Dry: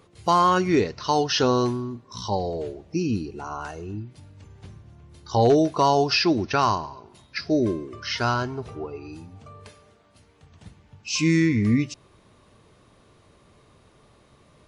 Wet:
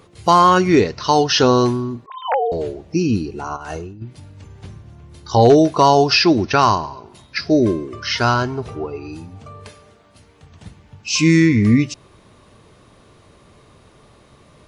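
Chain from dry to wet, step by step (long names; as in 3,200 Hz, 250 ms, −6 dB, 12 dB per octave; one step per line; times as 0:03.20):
0:02.06–0:02.52: three sine waves on the formant tracks
0:03.56–0:04.02: compressor whose output falls as the input rises −37 dBFS, ratio −0.5
level +7 dB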